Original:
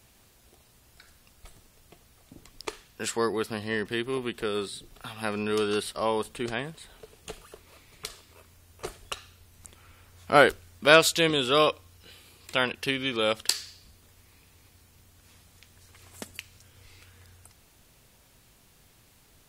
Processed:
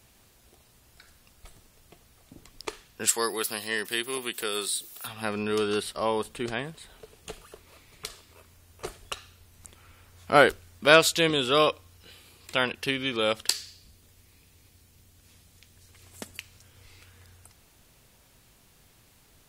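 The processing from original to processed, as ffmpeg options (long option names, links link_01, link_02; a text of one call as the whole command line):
ffmpeg -i in.wav -filter_complex "[0:a]asplit=3[link_01][link_02][link_03];[link_01]afade=type=out:start_time=3.07:duration=0.02[link_04];[link_02]aemphasis=mode=production:type=riaa,afade=type=in:start_time=3.07:duration=0.02,afade=type=out:start_time=5.06:duration=0.02[link_05];[link_03]afade=type=in:start_time=5.06:duration=0.02[link_06];[link_04][link_05][link_06]amix=inputs=3:normalize=0,asettb=1/sr,asplit=3[link_07][link_08][link_09];[link_07]atrim=end=13.514[link_10];[link_08]atrim=start=13.51:end=16.22,asetpts=PTS-STARTPTS,afade=type=in:duration=0.004:curve=qsin,afade=type=out:start_time=2.706:duration=0.004:curve=qsin,equalizer=frequency=1100:width_type=o:width=1.9:gain=-5[link_11];[link_09]atrim=start=16.216[link_12];[link_10][link_11]acrossfade=duration=0.004:curve1=hsin:curve2=qsin[link_13];[link_13][link_12]acrossfade=duration=0.004:curve1=qsin:curve2=hsin" out.wav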